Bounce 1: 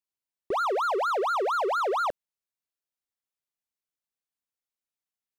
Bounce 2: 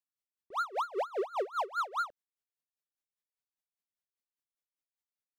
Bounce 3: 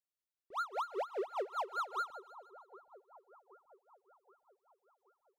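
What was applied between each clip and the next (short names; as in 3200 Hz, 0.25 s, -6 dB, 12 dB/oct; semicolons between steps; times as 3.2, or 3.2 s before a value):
dB-linear tremolo 5 Hz, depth 23 dB; gain -2.5 dB
split-band echo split 1100 Hz, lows 0.776 s, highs 0.155 s, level -15.5 dB; gain -4.5 dB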